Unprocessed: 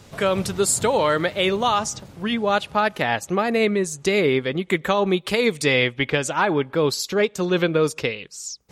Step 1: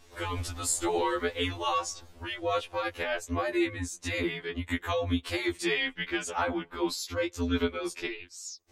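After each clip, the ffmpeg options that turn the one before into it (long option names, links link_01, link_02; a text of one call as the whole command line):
ffmpeg -i in.wav -af "equalizer=frequency=250:width=2.8:gain=-14.5,afreqshift=-100,afftfilt=real='re*2*eq(mod(b,4),0)':imag='im*2*eq(mod(b,4),0)':win_size=2048:overlap=0.75,volume=-6dB" out.wav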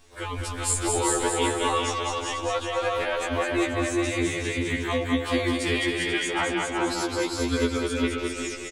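ffmpeg -i in.wav -filter_complex "[0:a]asplit=2[link_01][link_02];[link_02]aecho=0:1:210|367.5|485.6|574.2|640.7:0.631|0.398|0.251|0.158|0.1[link_03];[link_01][link_03]amix=inputs=2:normalize=0,aexciter=amount=1.3:drive=2.5:freq=8000,asplit=2[link_04][link_05];[link_05]aecho=0:1:399:0.708[link_06];[link_04][link_06]amix=inputs=2:normalize=0,volume=1dB" out.wav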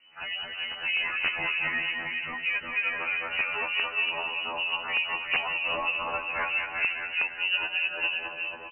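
ffmpeg -i in.wav -filter_complex "[0:a]acrossover=split=1100[link_01][link_02];[link_01]aeval=exprs='val(0)*(1-0.7/2+0.7/2*cos(2*PI*3.2*n/s))':channel_layout=same[link_03];[link_02]aeval=exprs='val(0)*(1-0.7/2-0.7/2*cos(2*PI*3.2*n/s))':channel_layout=same[link_04];[link_03][link_04]amix=inputs=2:normalize=0,aeval=exprs='(mod(7.08*val(0)+1,2)-1)/7.08':channel_layout=same,lowpass=frequency=2600:width_type=q:width=0.5098,lowpass=frequency=2600:width_type=q:width=0.6013,lowpass=frequency=2600:width_type=q:width=0.9,lowpass=frequency=2600:width_type=q:width=2.563,afreqshift=-3000" out.wav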